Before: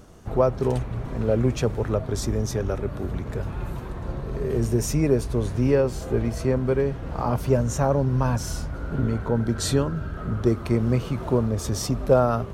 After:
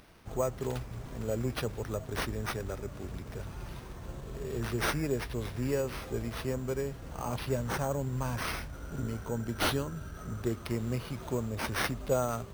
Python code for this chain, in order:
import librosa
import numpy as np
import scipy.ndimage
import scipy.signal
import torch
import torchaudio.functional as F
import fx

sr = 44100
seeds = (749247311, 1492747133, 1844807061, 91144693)

y = F.preemphasis(torch.from_numpy(x), 0.8).numpy()
y = np.repeat(y[::6], 6)[:len(y)]
y = y * librosa.db_to_amplitude(2.5)